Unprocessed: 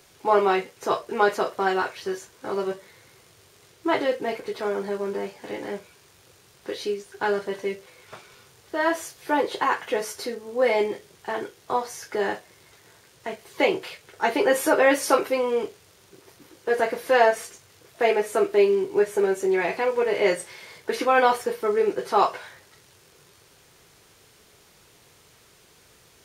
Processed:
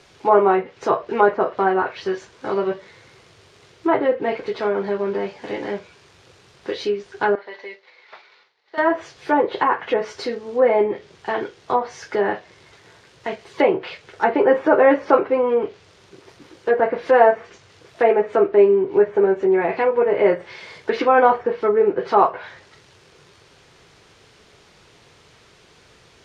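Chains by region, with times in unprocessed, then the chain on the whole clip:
0:07.35–0:08.78: loudspeaker in its box 470–5,200 Hz, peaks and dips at 870 Hz +5 dB, 2,000 Hz +9 dB, 4,200 Hz +7 dB + downward compressor 2 to 1, threshold −45 dBFS + downward expander −44 dBFS
whole clip: low-pass filter 5,000 Hz 12 dB per octave; treble cut that deepens with the level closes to 1,400 Hz, closed at −19.5 dBFS; level +5.5 dB

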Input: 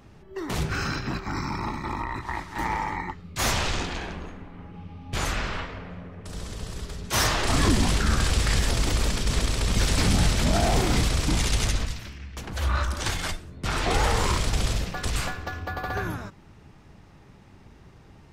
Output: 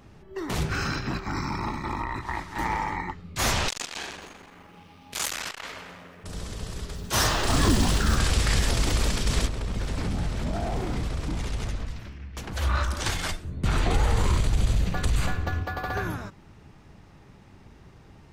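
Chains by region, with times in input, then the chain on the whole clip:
0:03.68–0:06.24: RIAA equalisation recording + echo with a time of its own for lows and highs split 2,300 Hz, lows 166 ms, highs 106 ms, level −13 dB + saturating transformer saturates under 3,400 Hz
0:06.94–0:08.17: parametric band 2,200 Hz −5 dB 0.3 octaves + noise that follows the level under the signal 25 dB
0:09.47–0:12.35: high-shelf EQ 2,300 Hz −11.5 dB + downward compressor 2 to 1, threshold −29 dBFS
0:13.44–0:15.63: low-shelf EQ 250 Hz +10 dB + downward compressor 3 to 1, threshold −19 dBFS + notch filter 5,300 Hz, Q 7.7
whole clip: no processing

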